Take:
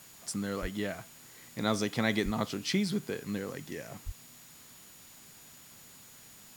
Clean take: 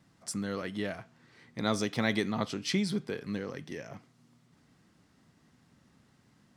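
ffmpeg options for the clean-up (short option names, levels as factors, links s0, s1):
-filter_complex "[0:a]bandreject=f=6900:w=30,asplit=3[s0][s1][s2];[s0]afade=t=out:st=0.61:d=0.02[s3];[s1]highpass=f=140:w=0.5412,highpass=f=140:w=1.3066,afade=t=in:st=0.61:d=0.02,afade=t=out:st=0.73:d=0.02[s4];[s2]afade=t=in:st=0.73:d=0.02[s5];[s3][s4][s5]amix=inputs=3:normalize=0,asplit=3[s6][s7][s8];[s6]afade=t=out:st=2.24:d=0.02[s9];[s7]highpass=f=140:w=0.5412,highpass=f=140:w=1.3066,afade=t=in:st=2.24:d=0.02,afade=t=out:st=2.36:d=0.02[s10];[s8]afade=t=in:st=2.36:d=0.02[s11];[s9][s10][s11]amix=inputs=3:normalize=0,asplit=3[s12][s13][s14];[s12]afade=t=out:st=4.05:d=0.02[s15];[s13]highpass=f=140:w=0.5412,highpass=f=140:w=1.3066,afade=t=in:st=4.05:d=0.02,afade=t=out:st=4.17:d=0.02[s16];[s14]afade=t=in:st=4.17:d=0.02[s17];[s15][s16][s17]amix=inputs=3:normalize=0,afftdn=nr=12:nf=-54"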